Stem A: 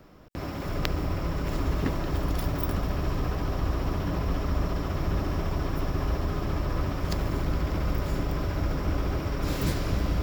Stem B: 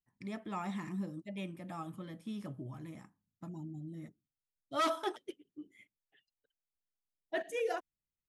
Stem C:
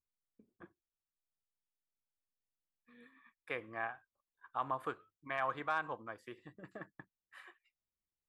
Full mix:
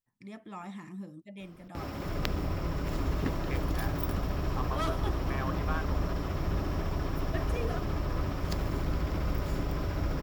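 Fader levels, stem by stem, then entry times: −3.5, −3.5, −2.5 decibels; 1.40, 0.00, 0.00 seconds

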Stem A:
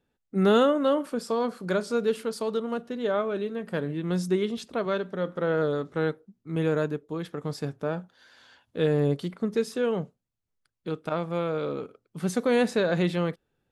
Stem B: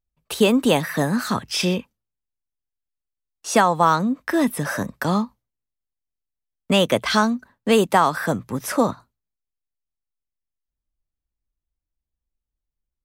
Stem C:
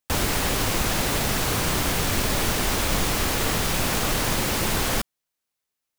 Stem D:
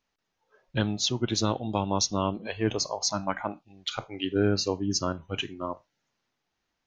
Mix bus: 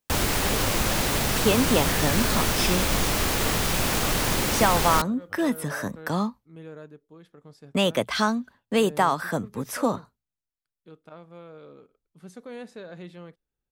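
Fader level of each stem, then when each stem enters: −16.5, −5.0, −0.5, −17.5 decibels; 0.00, 1.05, 0.00, 0.00 seconds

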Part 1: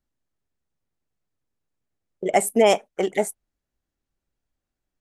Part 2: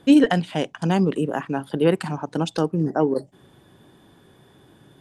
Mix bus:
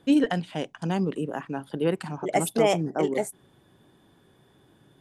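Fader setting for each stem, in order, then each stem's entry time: −5.5, −6.5 decibels; 0.00, 0.00 seconds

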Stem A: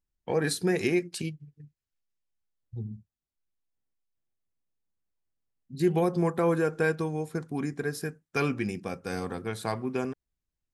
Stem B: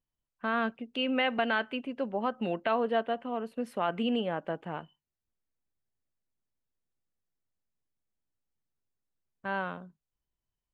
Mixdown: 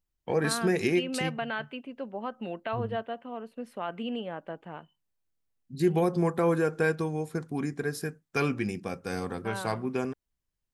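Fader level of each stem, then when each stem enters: 0.0, −4.5 decibels; 0.00, 0.00 seconds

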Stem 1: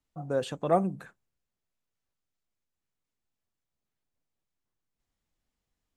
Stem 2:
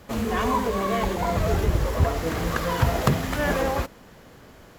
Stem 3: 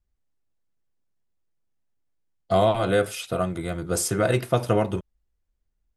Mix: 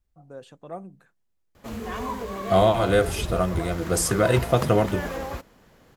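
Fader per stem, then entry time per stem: −12.5, −7.5, +1.5 decibels; 0.00, 1.55, 0.00 seconds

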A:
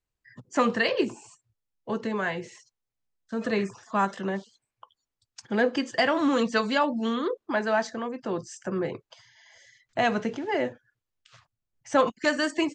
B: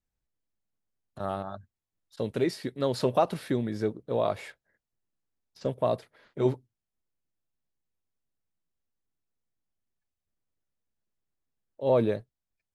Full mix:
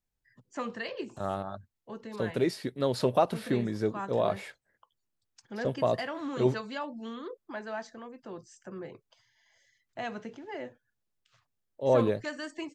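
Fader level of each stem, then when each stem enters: −12.5, −0.5 decibels; 0.00, 0.00 seconds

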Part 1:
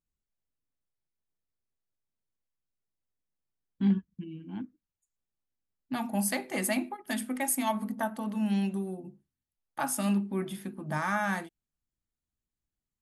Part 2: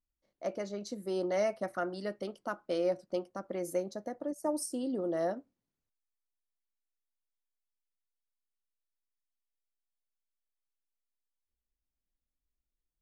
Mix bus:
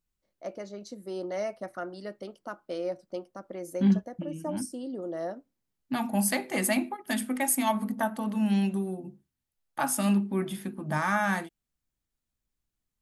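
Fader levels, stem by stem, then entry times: +3.0, −2.0 decibels; 0.00, 0.00 seconds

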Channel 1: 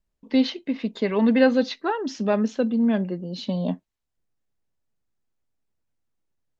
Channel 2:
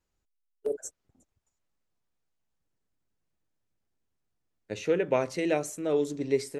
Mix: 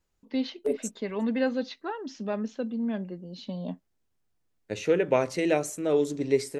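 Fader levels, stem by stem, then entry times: −9.0, +2.5 decibels; 0.00, 0.00 seconds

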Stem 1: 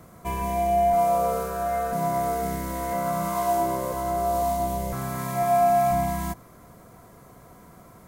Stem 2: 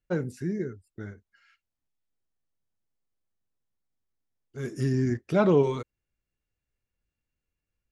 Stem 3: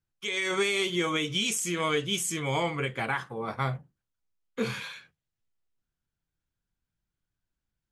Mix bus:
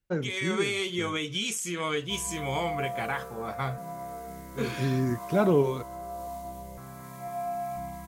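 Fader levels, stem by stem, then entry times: −13.5, −1.5, −2.5 decibels; 1.85, 0.00, 0.00 seconds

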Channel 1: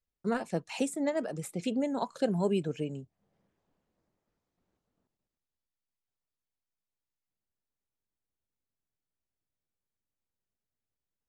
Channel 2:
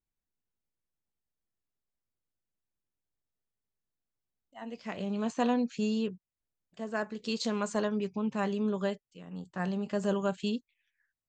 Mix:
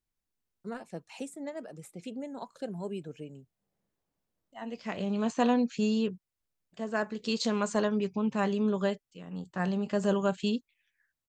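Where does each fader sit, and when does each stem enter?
−8.5, +2.5 decibels; 0.40, 0.00 seconds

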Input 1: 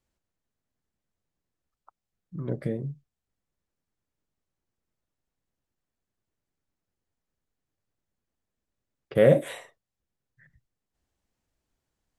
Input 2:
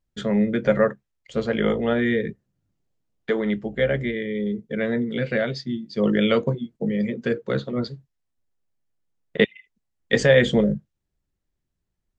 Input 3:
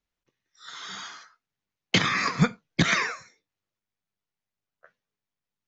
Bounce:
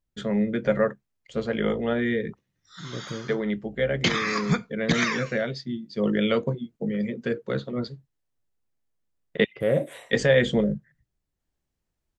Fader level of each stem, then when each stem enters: −5.0, −3.5, −2.0 decibels; 0.45, 0.00, 2.10 seconds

